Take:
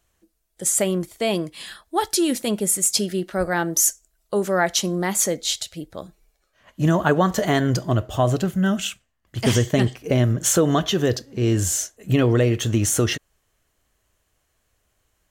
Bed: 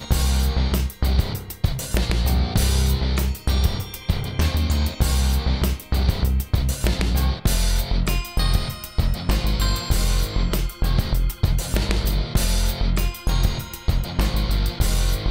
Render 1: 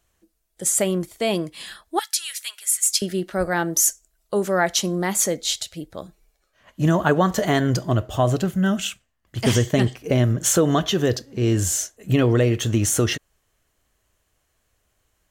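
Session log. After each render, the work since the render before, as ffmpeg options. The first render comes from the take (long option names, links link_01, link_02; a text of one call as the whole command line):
ffmpeg -i in.wav -filter_complex "[0:a]asettb=1/sr,asplit=3[link_01][link_02][link_03];[link_01]atrim=end=1.994[link_04];[link_02]atrim=start=1.99:end=3.02,asetpts=PTS-STARTPTS,afade=type=in:duration=0.004:curve=qsin,afade=type=out:start_time=1.026:duration=0.004:curve=qsin,highpass=frequency=1500:width=0.5412,highpass=frequency=1500:width=1.3066[link_05];[link_03]atrim=start=3.016[link_06];[link_04][link_05]acrossfade=duration=0.004:curve1=hsin:curve2=qsin[link_07];[link_07][link_06]acrossfade=duration=0.004:curve1=qsin:curve2=hsin" out.wav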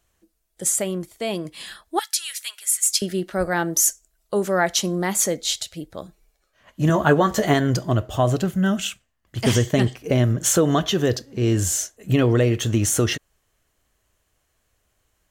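ffmpeg -i in.wav -filter_complex "[0:a]asettb=1/sr,asplit=3[link_01][link_02][link_03];[link_01]atrim=end=6.884[link_04];[link_02]atrim=start=6.88:end=7.54,asetpts=PTS-STARTPTS,afade=type=in:duration=0.004:curve=qsin,afade=type=out:start_time=0.656:duration=0.004:curve=qsin,asplit=2[link_05][link_06];[link_06]adelay=14,volume=-5.5dB[link_07];[link_05][link_07]amix=inputs=2:normalize=0,atrim=end_sample=29106[link_08];[link_03]atrim=start=7.536[link_09];[link_04][link_08]acrossfade=duration=0.004:curve1=hsin:curve2=qsin[link_10];[link_10][link_09]acrossfade=duration=0.004:curve1=qsin:curve2=hsin,asplit=3[link_11][link_12][link_13];[link_11]atrim=end=0.762[link_14];[link_12]atrim=start=0.758:end=1.452,asetpts=PTS-STARTPTS,volume=-4dB[link_15];[link_13]atrim=start=1.448[link_16];[link_14][link_15]acrossfade=duration=0.004:curve1=hsin:curve2=hsin[link_17];[link_17][link_16]acrossfade=duration=0.004:curve1=hsin:curve2=hsin" out.wav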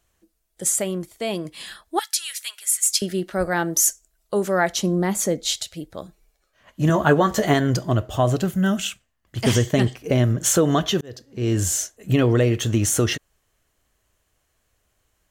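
ffmpeg -i in.wav -filter_complex "[0:a]asettb=1/sr,asplit=3[link_01][link_02][link_03];[link_01]atrim=end=4.724[link_04];[link_02]atrim=start=4.72:end=5.46,asetpts=PTS-STARTPTS,afade=type=in:duration=0.004:curve=qsin,afade=type=out:start_time=0.736:duration=0.004:curve=qsin,tiltshelf=frequency=670:gain=4.5[link_05];[link_03]atrim=start=5.456[link_06];[link_04][link_05]acrossfade=duration=0.004:curve1=hsin:curve2=qsin[link_07];[link_07][link_06]acrossfade=duration=0.004:curve1=qsin:curve2=hsin,asettb=1/sr,asplit=3[link_08][link_09][link_10];[link_08]atrim=end=8.424[link_11];[link_09]atrim=start=8.42:end=8.82,asetpts=PTS-STARTPTS,afade=type=in:duration=0.004:curve=qsin,afade=type=out:start_time=0.396:duration=0.004:curve=qsin,highshelf=frequency=8300:gain=6.5[link_12];[link_10]atrim=start=8.816[link_13];[link_11][link_12]acrossfade=duration=0.004:curve1=hsin:curve2=qsin[link_14];[link_14][link_13]acrossfade=duration=0.004:curve1=qsin:curve2=hsin,asplit=2[link_15][link_16];[link_15]atrim=end=11.01,asetpts=PTS-STARTPTS,afade=type=out:start_time=11.006:duration=0.004:curve=hsin[link_17];[link_16]atrim=start=11.01,asetpts=PTS-STARTPTS,afade=type=in:duration=0.6[link_18];[link_17][link_18]concat=n=2:v=0:a=1" out.wav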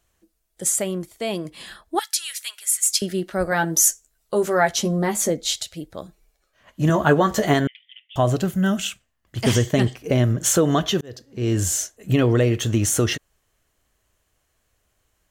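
ffmpeg -i in.wav -filter_complex "[0:a]asettb=1/sr,asplit=3[link_01][link_02][link_03];[link_01]atrim=end=1.504[link_04];[link_02]atrim=start=1.5:end=1.95,asetpts=PTS-STARTPTS,afade=type=in:duration=0.004:curve=qsin,afade=type=out:start_time=0.446:duration=0.004:curve=qsin,tiltshelf=frequency=1300:gain=4[link_05];[link_03]atrim=start=1.946[link_06];[link_04][link_05]acrossfade=duration=0.004:curve1=hsin:curve2=qsin[link_07];[link_07][link_06]acrossfade=duration=0.004:curve1=qsin:curve2=hsin,asettb=1/sr,asplit=3[link_08][link_09][link_10];[link_08]atrim=end=3.504[link_11];[link_09]atrim=start=3.5:end=5.3,asetpts=PTS-STARTPTS,afade=type=in:duration=0.004:curve=qsin,afade=type=out:start_time=1.796:duration=0.004:curve=qsin,asplit=2[link_12][link_13];[link_13]adelay=13,volume=-3.5dB[link_14];[link_12][link_14]amix=inputs=2:normalize=0,atrim=end_sample=79380[link_15];[link_10]atrim=start=5.296[link_16];[link_11][link_15]acrossfade=duration=0.004:curve1=hsin:curve2=qsin[link_17];[link_17][link_16]acrossfade=duration=0.004:curve1=qsin:curve2=hsin,asettb=1/sr,asplit=3[link_18][link_19][link_20];[link_18]atrim=end=7.674[link_21];[link_19]atrim=start=7.67:end=8.16,asetpts=PTS-STARTPTS,afade=type=in:duration=0.004:curve=qsin,afade=type=out:start_time=0.486:duration=0.004:curve=qsin,asuperpass=centerf=2600:order=12:qfactor=1.8[link_22];[link_20]atrim=start=8.156[link_23];[link_21][link_22]acrossfade=duration=0.004:curve1=hsin:curve2=qsin[link_24];[link_24][link_23]acrossfade=duration=0.004:curve1=qsin:curve2=hsin" out.wav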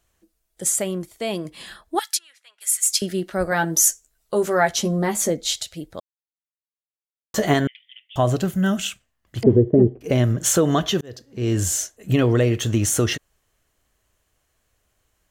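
ffmpeg -i in.wav -filter_complex "[0:a]asplit=3[link_01][link_02][link_03];[link_01]afade=type=out:start_time=2.17:duration=0.02[link_04];[link_02]bandpass=frequency=200:width_type=q:width=0.59,afade=type=in:start_time=2.17:duration=0.02,afade=type=out:start_time=2.6:duration=0.02[link_05];[link_03]afade=type=in:start_time=2.6:duration=0.02[link_06];[link_04][link_05][link_06]amix=inputs=3:normalize=0,asettb=1/sr,asplit=3[link_07][link_08][link_09];[link_07]atrim=end=9.434[link_10];[link_08]atrim=start=9.43:end=10.01,asetpts=PTS-STARTPTS,afade=type=in:duration=0.004:curve=qsin,afade=type=out:start_time=0.576:duration=0.004:curve=qsin,lowpass=frequency=390:width_type=q:width=3.2[link_11];[link_09]atrim=start=10.006[link_12];[link_10][link_11]acrossfade=duration=0.004:curve1=hsin:curve2=qsin[link_13];[link_13][link_12]acrossfade=duration=0.004:curve1=qsin:curve2=hsin,asplit=3[link_14][link_15][link_16];[link_14]atrim=end=6,asetpts=PTS-STARTPTS,afade=type=out:start_time=5.996:duration=0.004:curve=hsin[link_17];[link_15]atrim=start=6:end=7.34,asetpts=PTS-STARTPTS,volume=0[link_18];[link_16]atrim=start=7.34,asetpts=PTS-STARTPTS,afade=type=in:duration=0.004:curve=hsin[link_19];[link_17][link_18][link_19]concat=n=3:v=0:a=1" out.wav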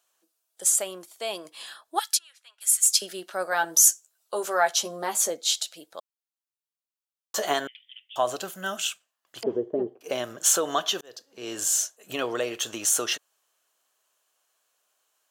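ffmpeg -i in.wav -af "highpass=720,equalizer=frequency=2000:width=3.3:gain=-8.5" out.wav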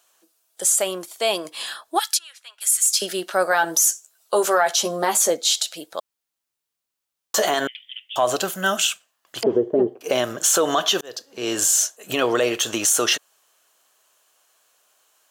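ffmpeg -i in.wav -filter_complex "[0:a]asplit=2[link_01][link_02];[link_02]acontrast=69,volume=0.5dB[link_03];[link_01][link_03]amix=inputs=2:normalize=0,alimiter=limit=-9dB:level=0:latency=1:release=62" out.wav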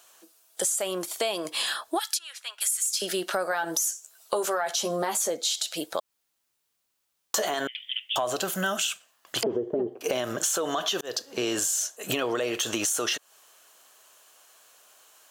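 ffmpeg -i in.wav -filter_complex "[0:a]asplit=2[link_01][link_02];[link_02]alimiter=limit=-19.5dB:level=0:latency=1:release=32,volume=0dB[link_03];[link_01][link_03]amix=inputs=2:normalize=0,acompressor=threshold=-25dB:ratio=6" out.wav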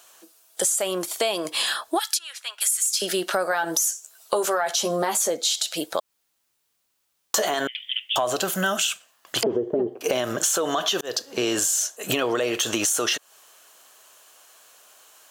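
ffmpeg -i in.wav -af "volume=4dB" out.wav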